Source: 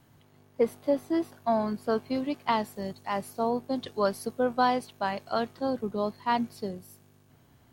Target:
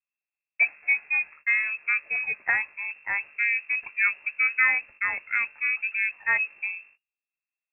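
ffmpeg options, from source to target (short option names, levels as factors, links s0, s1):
-filter_complex "[0:a]agate=range=0.0126:threshold=0.00355:ratio=16:detection=peak,asettb=1/sr,asplit=3[s0][s1][s2];[s0]atrim=end=0.614[s3];[s1]atrim=start=0.61:end=2.88,asetpts=PTS-STARTPTS,afade=t=in:d=0.004:c=qsin,afade=t=out:st=2.266:d=0.004:c=qsin,highpass=f=180:p=1[s4];[s2]atrim=start=2.876[s5];[s3][s4]acrossfade=d=0.004:c1=hsin:c2=qsin[s6];[s6][s5]acrossfade=d=0.004:c1=qsin:c2=hsin,lowpass=f=2400:t=q:w=0.5098,lowpass=f=2400:t=q:w=0.6013,lowpass=f=2400:t=q:w=0.9,lowpass=f=2400:t=q:w=2.563,afreqshift=-2800,volume=1.33"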